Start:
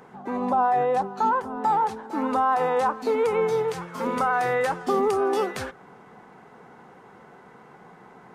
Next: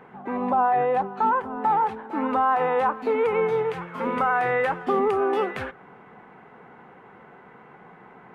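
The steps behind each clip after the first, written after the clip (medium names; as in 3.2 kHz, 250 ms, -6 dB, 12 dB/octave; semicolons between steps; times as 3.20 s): resonant high shelf 3.8 kHz -13 dB, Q 1.5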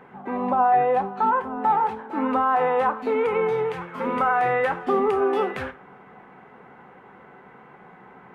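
gated-style reverb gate 120 ms falling, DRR 9 dB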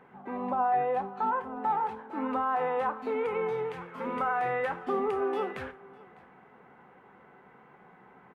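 delay 603 ms -23.5 dB; trim -8 dB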